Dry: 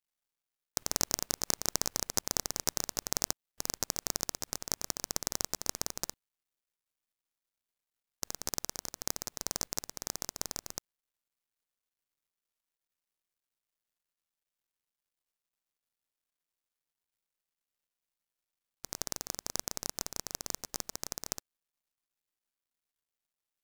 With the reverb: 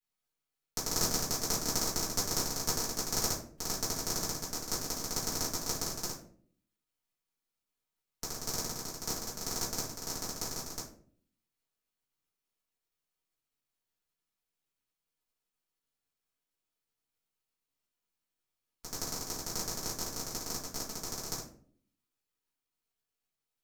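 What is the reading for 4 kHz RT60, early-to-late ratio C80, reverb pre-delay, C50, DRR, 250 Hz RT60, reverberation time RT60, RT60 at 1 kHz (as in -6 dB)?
0.30 s, 11.0 dB, 3 ms, 6.5 dB, -9.5 dB, 0.80 s, 0.55 s, 0.45 s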